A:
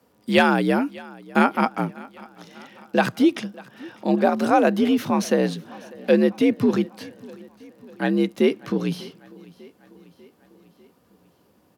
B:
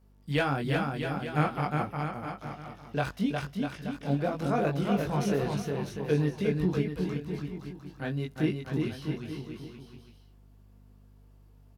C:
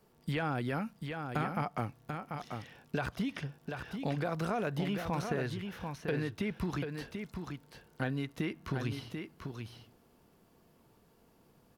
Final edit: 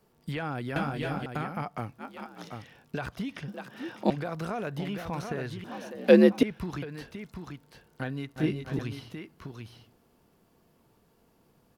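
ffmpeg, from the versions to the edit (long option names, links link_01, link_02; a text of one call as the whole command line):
ffmpeg -i take0.wav -i take1.wav -i take2.wav -filter_complex "[1:a]asplit=2[link_01][link_02];[0:a]asplit=3[link_03][link_04][link_05];[2:a]asplit=6[link_06][link_07][link_08][link_09][link_10][link_11];[link_06]atrim=end=0.762[link_12];[link_01]atrim=start=0.758:end=1.262[link_13];[link_07]atrim=start=1.258:end=2.04[link_14];[link_03]atrim=start=1.98:end=2.53[link_15];[link_08]atrim=start=2.47:end=3.482[link_16];[link_04]atrim=start=3.478:end=4.102[link_17];[link_09]atrim=start=4.098:end=5.642[link_18];[link_05]atrim=start=5.638:end=6.432[link_19];[link_10]atrim=start=6.428:end=8.362[link_20];[link_02]atrim=start=8.358:end=8.792[link_21];[link_11]atrim=start=8.788[link_22];[link_12][link_13]acrossfade=duration=0.004:curve1=hsin:curve2=hsin[link_23];[link_23][link_14]acrossfade=duration=0.004:curve1=hsin:curve2=hsin[link_24];[link_24][link_15]acrossfade=duration=0.06:curve1=tri:curve2=tri[link_25];[link_25][link_16]acrossfade=duration=0.06:curve1=tri:curve2=tri[link_26];[link_26][link_17]acrossfade=duration=0.004:curve1=hsin:curve2=hsin[link_27];[link_27][link_18]acrossfade=duration=0.004:curve1=hsin:curve2=hsin[link_28];[link_28][link_19]acrossfade=duration=0.004:curve1=hsin:curve2=hsin[link_29];[link_29][link_20]acrossfade=duration=0.004:curve1=hsin:curve2=hsin[link_30];[link_30][link_21]acrossfade=duration=0.004:curve1=hsin:curve2=hsin[link_31];[link_31][link_22]acrossfade=duration=0.004:curve1=hsin:curve2=hsin" out.wav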